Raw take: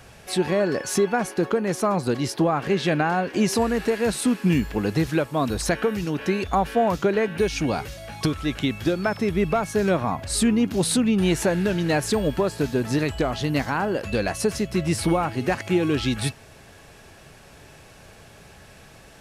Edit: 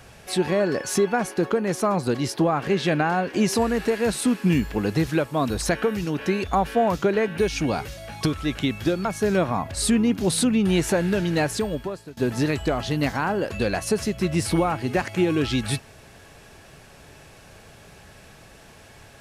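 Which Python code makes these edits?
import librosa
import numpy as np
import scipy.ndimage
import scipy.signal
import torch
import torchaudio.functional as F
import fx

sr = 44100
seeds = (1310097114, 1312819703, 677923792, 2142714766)

y = fx.edit(x, sr, fx.cut(start_s=9.05, length_s=0.53),
    fx.fade_out_to(start_s=11.9, length_s=0.8, floor_db=-24.0), tone=tone)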